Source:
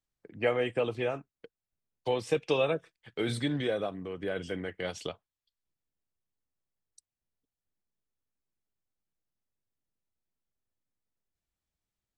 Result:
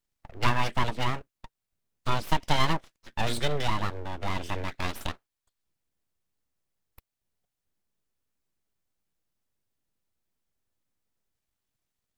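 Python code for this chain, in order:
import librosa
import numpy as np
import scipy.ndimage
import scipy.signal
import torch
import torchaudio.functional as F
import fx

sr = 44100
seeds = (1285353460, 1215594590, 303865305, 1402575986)

y = np.abs(x)
y = y * 10.0 ** (6.0 / 20.0)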